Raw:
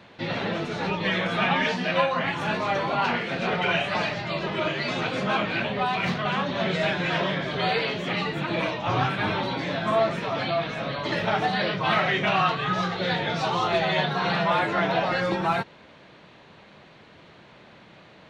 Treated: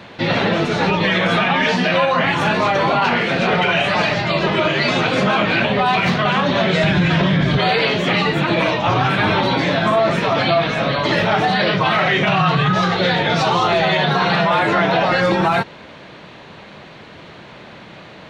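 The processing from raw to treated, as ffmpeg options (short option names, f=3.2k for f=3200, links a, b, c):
-filter_complex "[0:a]asplit=3[a][b][c];[a]afade=t=out:st=6.82:d=0.02[d];[b]asubboost=boost=4:cutoff=240,afade=t=in:st=6.82:d=0.02,afade=t=out:st=7.57:d=0.02[e];[c]afade=t=in:st=7.57:d=0.02[f];[d][e][f]amix=inputs=3:normalize=0,asettb=1/sr,asplit=3[g][h][i];[g]atrim=end=12.284[j];[h]atrim=start=12.28:end=12.75,asetpts=PTS-STARTPTS,afade=t=in:d=0.004:c=qsin,afade=t=out:st=0.466:d=0.004:c=qsin,equalizer=f=150:w=2.3:g=10.5[k];[i]atrim=start=12.746[l];[j][k]acrossfade=d=0.004:c1=hsin:c2=qsin[m];[m][l]acrossfade=d=0.004:c1=qsin:c2=hsin,alimiter=level_in=18dB:limit=-1dB:release=50:level=0:latency=1,volume=-6.5dB"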